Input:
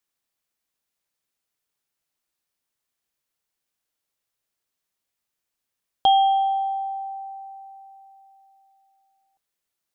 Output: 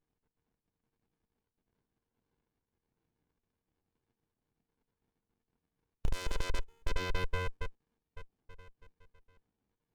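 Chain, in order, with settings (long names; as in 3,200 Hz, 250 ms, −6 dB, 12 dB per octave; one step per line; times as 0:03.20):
time-frequency cells dropped at random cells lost 58%
downward compressor 6 to 1, threshold −33 dBFS, peak gain reduction 15.5 dB
ring modulation 230 Hz
asymmetric clip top −34.5 dBFS
low-pass that shuts in the quiet parts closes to 2,500 Hz, open at −40 dBFS
windowed peak hold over 65 samples
level +15.5 dB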